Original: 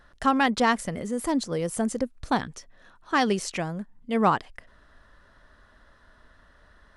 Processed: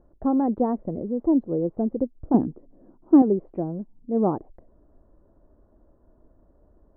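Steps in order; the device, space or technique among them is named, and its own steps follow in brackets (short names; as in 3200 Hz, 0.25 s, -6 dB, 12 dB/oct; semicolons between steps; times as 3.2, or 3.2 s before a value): 2.34–3.22 bell 260 Hz +11 dB 1.3 oct; under water (LPF 730 Hz 24 dB/oct; bell 330 Hz +9 dB 0.53 oct)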